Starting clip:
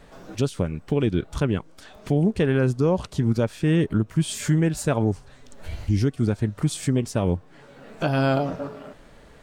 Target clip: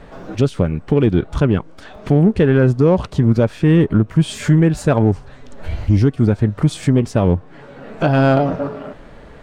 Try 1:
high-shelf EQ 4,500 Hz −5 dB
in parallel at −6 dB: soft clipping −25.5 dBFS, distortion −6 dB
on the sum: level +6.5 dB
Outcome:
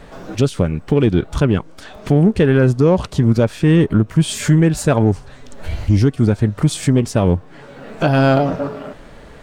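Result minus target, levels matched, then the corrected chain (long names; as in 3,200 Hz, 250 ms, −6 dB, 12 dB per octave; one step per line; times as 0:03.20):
8,000 Hz band +7.0 dB
high-shelf EQ 4,500 Hz −15 dB
in parallel at −6 dB: soft clipping −25.5 dBFS, distortion −7 dB
on the sum: level +6.5 dB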